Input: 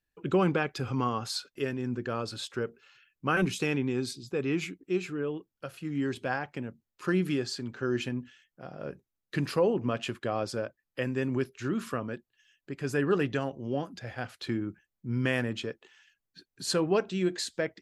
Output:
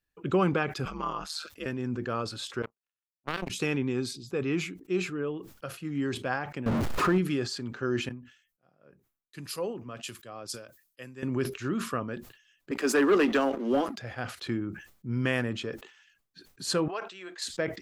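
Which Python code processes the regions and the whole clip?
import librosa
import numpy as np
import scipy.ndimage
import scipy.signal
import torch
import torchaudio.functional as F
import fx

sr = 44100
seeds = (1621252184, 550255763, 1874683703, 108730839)

y = fx.chain(x, sr, fx.low_shelf(hz=410.0, db=-9.0),
    fx.ring_mod(carrier_hz=78.0), at=(0.85, 1.66))
y = fx.chain(y, sr, fx.median_filter(points=5),
    fx.power_curve(exponent=3.0), at=(2.62, 3.5))
y = fx.chain(y, sr, fx.zero_step(step_db=-30.0),
    fx.lowpass(hz=1400.0, slope=6),
    fx.env_flatten(amount_pct=70), at=(6.66, 7.18))
y = fx.chain(y, sr, fx.pre_emphasis(coefficient=0.8),
    fx.band_widen(depth_pct=100), at=(8.09, 11.23))
y = fx.chain(y, sr, fx.steep_highpass(hz=210.0, slope=72),
    fx.leveller(passes=2), at=(12.71, 13.98))
y = fx.chain(y, sr, fx.highpass(hz=920.0, slope=12),
    fx.high_shelf(hz=2600.0, db=-10.0), at=(16.88, 17.42))
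y = fx.peak_eq(y, sr, hz=1200.0, db=4.0, octaves=0.28)
y = fx.sustainer(y, sr, db_per_s=110.0)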